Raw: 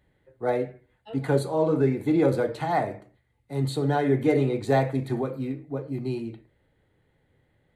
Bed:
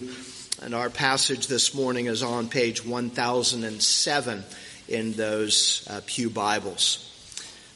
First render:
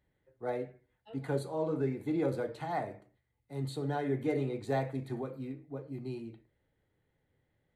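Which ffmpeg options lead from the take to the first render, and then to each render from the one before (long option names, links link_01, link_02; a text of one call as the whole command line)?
ffmpeg -i in.wav -af "volume=-10dB" out.wav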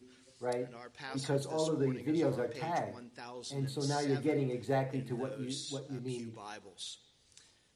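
ffmpeg -i in.wav -i bed.wav -filter_complex "[1:a]volume=-22dB[link_01];[0:a][link_01]amix=inputs=2:normalize=0" out.wav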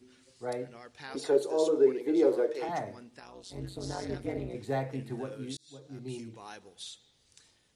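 ffmpeg -i in.wav -filter_complex "[0:a]asettb=1/sr,asplit=3[link_01][link_02][link_03];[link_01]atrim=end=1.154[link_04];[link_02]atrim=start=1.15:end=2.69,asetpts=PTS-STARTPTS,afade=type=in:duration=0.004:curve=qsin,afade=type=out:start_time=1.536:duration=0.004:curve=qsin,highpass=frequency=390:width_type=q:width=4[link_05];[link_03]atrim=start=2.686[link_06];[link_04][link_05]acrossfade=duration=0.004:curve1=hsin:curve2=qsin[link_07];[link_07][link_06]acrossfade=duration=0.004:curve1=qsin:curve2=hsin,asettb=1/sr,asplit=3[link_08][link_09][link_10];[link_08]atrim=end=3.194[link_11];[link_09]atrim=start=3.19:end=4.55,asetpts=PTS-STARTPTS,afade=type=in:duration=0.004:curve=qsin,afade=type=out:start_time=1.356:duration=0.004:curve=qsin,tremolo=f=190:d=0.889[link_12];[link_10]atrim=start=4.546[link_13];[link_11][link_12]acrossfade=duration=0.004:curve1=hsin:curve2=qsin[link_14];[link_14][link_13]acrossfade=duration=0.004:curve1=qsin:curve2=hsin,asplit=2[link_15][link_16];[link_15]atrim=end=5.57,asetpts=PTS-STARTPTS,afade=type=out:start_time=5.566:duration=0.004:curve=hsin[link_17];[link_16]atrim=start=5.57,asetpts=PTS-STARTPTS,afade=type=in:duration=0.54[link_18];[link_17][link_18]concat=n=2:v=0:a=1" out.wav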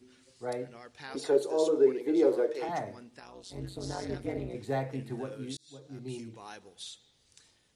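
ffmpeg -i in.wav -af anull out.wav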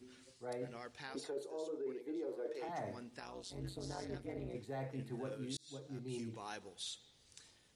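ffmpeg -i in.wav -af "alimiter=limit=-23.5dB:level=0:latency=1:release=418,areverse,acompressor=threshold=-40dB:ratio=6,areverse" out.wav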